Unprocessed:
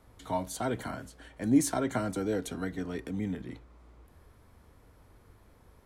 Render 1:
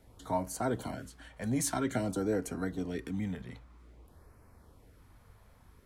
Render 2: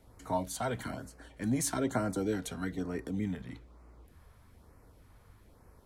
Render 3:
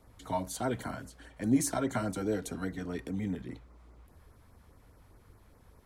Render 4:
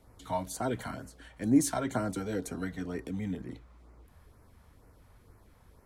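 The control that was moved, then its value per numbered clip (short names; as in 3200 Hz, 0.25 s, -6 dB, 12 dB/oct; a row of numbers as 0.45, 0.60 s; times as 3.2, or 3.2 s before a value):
LFO notch, rate: 0.51, 1.1, 4.9, 2.1 Hz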